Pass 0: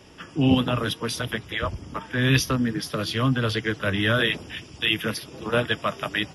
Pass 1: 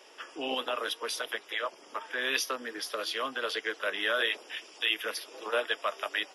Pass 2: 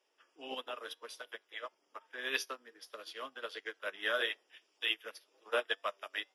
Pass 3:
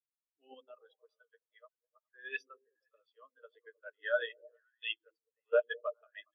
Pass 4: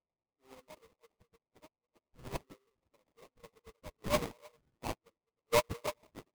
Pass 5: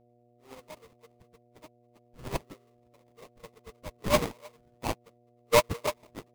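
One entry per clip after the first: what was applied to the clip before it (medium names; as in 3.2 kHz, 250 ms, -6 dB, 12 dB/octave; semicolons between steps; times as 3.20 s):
high-pass 430 Hz 24 dB/octave; in parallel at -2.5 dB: compression, threshold -35 dBFS, peak gain reduction 16.5 dB; on the sum: trim -6.5 dB
flange 1.7 Hz, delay 9.8 ms, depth 1.3 ms, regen +82%; upward expansion 2.5:1, over -45 dBFS; trim +2.5 dB
repeats whose band climbs or falls 103 ms, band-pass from 220 Hz, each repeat 0.7 oct, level -4 dB; spectral contrast expander 2.5:1
sample-rate reducer 1.6 kHz, jitter 20%
mains buzz 120 Hz, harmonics 6, -71 dBFS -1 dB/octave; trim +7 dB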